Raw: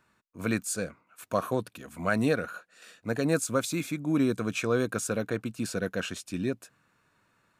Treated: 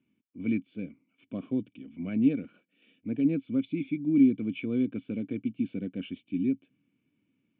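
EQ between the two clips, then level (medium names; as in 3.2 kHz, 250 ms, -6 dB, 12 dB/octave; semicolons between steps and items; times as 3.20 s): cascade formant filter i; high-pass 97 Hz; +7.0 dB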